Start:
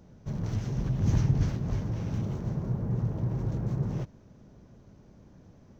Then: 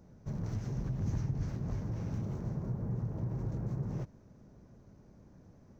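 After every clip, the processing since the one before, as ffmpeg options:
-af "equalizer=f=3.2k:t=o:w=0.72:g=-7,acompressor=threshold=-29dB:ratio=2.5,volume=-3.5dB"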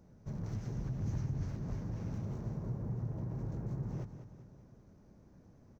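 -af "aecho=1:1:197|394|591|788|985|1182:0.299|0.155|0.0807|0.042|0.0218|0.0114,volume=-3dB"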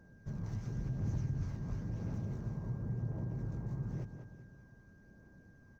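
-af "aphaser=in_gain=1:out_gain=1:delay=1.1:decay=0.25:speed=0.95:type=triangular,aeval=exprs='val(0)+0.000562*sin(2*PI*1600*n/s)':c=same,volume=-2dB"

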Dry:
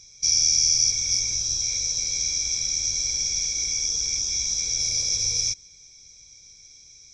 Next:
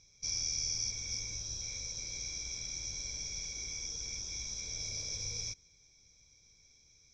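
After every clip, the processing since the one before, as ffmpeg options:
-af "aemphasis=mode=reproduction:type=75kf,volume=-6.5dB"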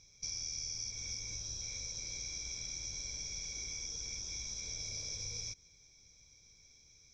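-af "acompressor=threshold=-41dB:ratio=3,volume=1.5dB"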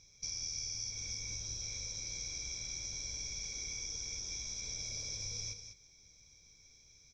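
-af "aecho=1:1:197:0.355"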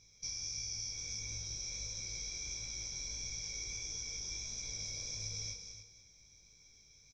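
-af "flanger=delay=17.5:depth=3.9:speed=1.5,aecho=1:1:288:0.299,volume=2dB"

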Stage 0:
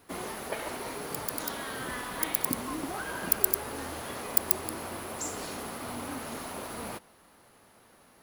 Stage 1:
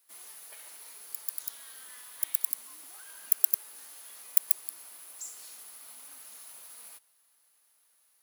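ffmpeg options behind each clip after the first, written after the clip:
-af "aderivative,volume=-4.5dB"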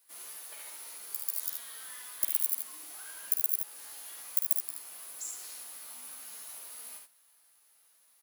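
-filter_complex "[0:a]alimiter=limit=-8.5dB:level=0:latency=1:release=450,asplit=2[a][b];[b]adelay=13,volume=-4dB[c];[a][c]amix=inputs=2:normalize=0,aecho=1:1:50|75:0.376|0.531"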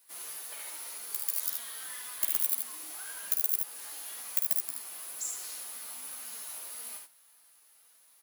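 -filter_complex "[0:a]asplit=2[a][b];[b]aeval=exprs='0.398*sin(PI/2*3.16*val(0)/0.398)':c=same,volume=-8dB[c];[a][c]amix=inputs=2:normalize=0,flanger=delay=3.8:depth=2.8:regen=65:speed=1.9:shape=triangular,volume=-1.5dB"

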